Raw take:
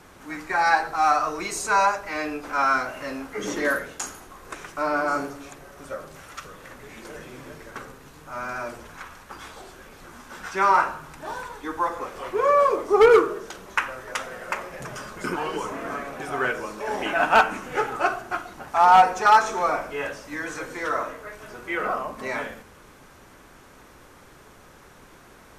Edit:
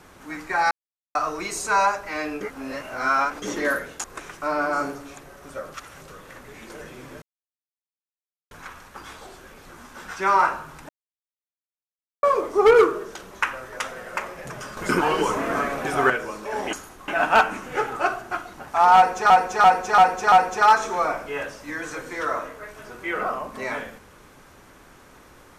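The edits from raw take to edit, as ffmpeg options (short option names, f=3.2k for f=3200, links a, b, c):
-filter_complex "[0:a]asplit=20[a][b][c][d][e][f][g][h][i][j][k][l][m][n][o][p][q][r][s][t];[a]atrim=end=0.71,asetpts=PTS-STARTPTS,afade=t=out:st=0.706:d=0.004:c=hsin[u];[b]atrim=start=0.71:end=1.15,asetpts=PTS-STARTPTS,volume=0[v];[c]atrim=start=1.15:end=2.412,asetpts=PTS-STARTPTS,afade=t=in:d=0.004:c=hsin[w];[d]atrim=start=2.408:end=3.422,asetpts=PTS-STARTPTS,areverse[x];[e]atrim=start=3.418:end=4.042[y];[f]atrim=start=4.388:end=6.092[z];[g]atrim=start=6.088:end=6.432,asetpts=PTS-STARTPTS,areverse[aa];[h]atrim=start=6.428:end=7.57,asetpts=PTS-STARTPTS,afade=t=out:st=1.138:d=0.004:c=hsin[ab];[i]atrim=start=7.57:end=8.86,asetpts=PTS-STARTPTS,volume=0[ac];[j]atrim=start=8.86:end=11.24,asetpts=PTS-STARTPTS,afade=t=in:d=0.004:c=hsin,afade=t=out:st=2.376:d=0.004:c=hsin[ad];[k]atrim=start=11.24:end=12.58,asetpts=PTS-STARTPTS,volume=0[ae];[l]atrim=start=12.58:end=15.122,asetpts=PTS-STARTPTS,afade=t=in:d=0.004:c=hsin[af];[m]atrim=start=15.118:end=16.452,asetpts=PTS-STARTPTS,volume=7dB[ag];[n]atrim=start=16.448:end=17.082[ah];[o]atrim=start=4.038:end=4.392[ai];[p]atrim=start=17.078:end=19.302[aj];[q]atrim=start=18.958:end=19.302[ak];[r]atrim=start=18.958:end=19.302[al];[s]atrim=start=18.958:end=19.302[am];[t]atrim=start=18.958[an];[u][v][w]concat=n=3:v=0:a=1[ao];[ao][x]acrossfade=d=0.004:c1=hsin:c2=hsin[ap];[ap][y]acrossfade=d=0.004:c1=hsin:c2=hsin[aq];[aq][z]acrossfade=d=0.004:c1=hsin:c2=hsin[ar];[ar][aa]acrossfade=d=0.004:c1=hsin:c2=hsin[as];[ab][ac][ad][ae][af]concat=n=5:v=0:a=1[at];[as][at]acrossfade=d=0.004:c1=hsin:c2=hsin[au];[au][ag]acrossfade=d=0.004:c1=hsin:c2=hsin[av];[av][ah]acrossfade=d=0.004:c1=hsin:c2=hsin[aw];[aw][ai]acrossfade=d=0.004:c1=hsin:c2=hsin[ax];[ax][aj]acrossfade=d=0.004:c1=hsin:c2=hsin[ay];[ay][ak]acrossfade=d=0.004:c1=hsin:c2=hsin[az];[az][al]acrossfade=d=0.004:c1=hsin:c2=hsin[ba];[ba][am]acrossfade=d=0.004:c1=hsin:c2=hsin[bb];[bb][an]acrossfade=d=0.004:c1=hsin:c2=hsin"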